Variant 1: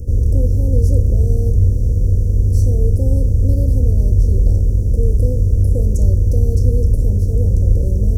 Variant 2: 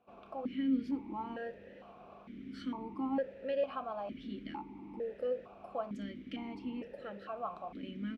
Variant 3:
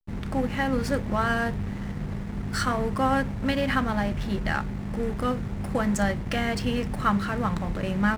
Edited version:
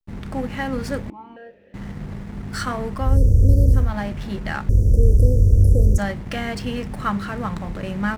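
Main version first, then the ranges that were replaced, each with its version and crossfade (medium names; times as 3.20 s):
3
1.10–1.74 s: from 2
3.06–3.85 s: from 1, crossfade 0.24 s
4.69–5.98 s: from 1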